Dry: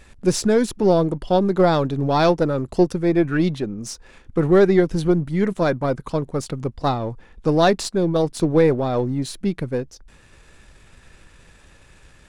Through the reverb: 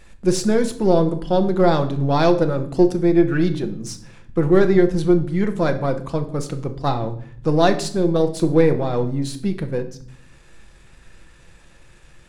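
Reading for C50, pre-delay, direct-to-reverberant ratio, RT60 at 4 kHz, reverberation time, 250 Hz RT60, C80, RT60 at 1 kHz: 13.0 dB, 6 ms, 6.5 dB, 0.50 s, 0.55 s, 1.0 s, 16.5 dB, 0.55 s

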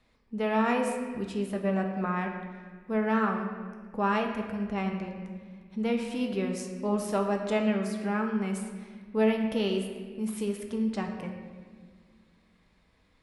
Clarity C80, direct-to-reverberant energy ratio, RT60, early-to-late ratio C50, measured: 7.0 dB, 2.5 dB, 1.7 s, 5.5 dB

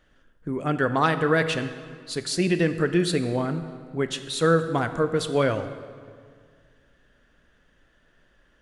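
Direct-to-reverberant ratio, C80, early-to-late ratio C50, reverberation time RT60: 10.0 dB, 12.0 dB, 11.0 dB, 2.0 s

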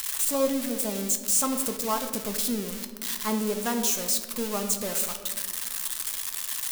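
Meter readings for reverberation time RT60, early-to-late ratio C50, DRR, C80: 1.6 s, 9.0 dB, 5.0 dB, 10.5 dB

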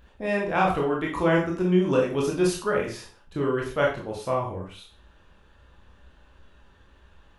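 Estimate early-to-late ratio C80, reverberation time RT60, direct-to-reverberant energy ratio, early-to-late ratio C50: 10.5 dB, 0.40 s, -2.5 dB, 6.0 dB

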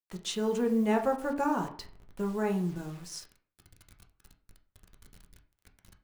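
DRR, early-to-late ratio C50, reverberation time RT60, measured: 3.0 dB, 12.0 dB, 0.50 s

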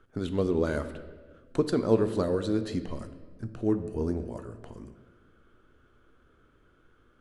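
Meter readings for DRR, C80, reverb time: 9.0 dB, 12.5 dB, 1.3 s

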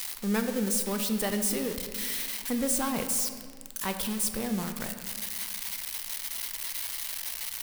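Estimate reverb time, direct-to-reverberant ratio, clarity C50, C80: 1.7 s, 6.0 dB, 8.0 dB, 9.0 dB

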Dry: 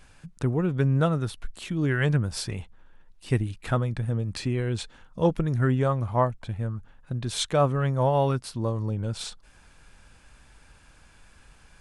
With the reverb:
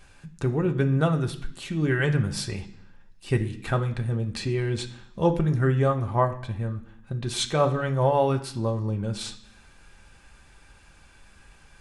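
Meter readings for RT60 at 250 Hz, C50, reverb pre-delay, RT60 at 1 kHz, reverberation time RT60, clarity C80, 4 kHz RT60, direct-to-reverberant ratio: 0.90 s, 13.0 dB, 3 ms, 0.70 s, 0.65 s, 16.5 dB, 0.80 s, 3.0 dB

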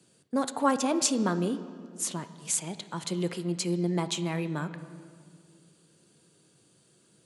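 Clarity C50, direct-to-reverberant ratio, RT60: 12.5 dB, 11.0 dB, 2.1 s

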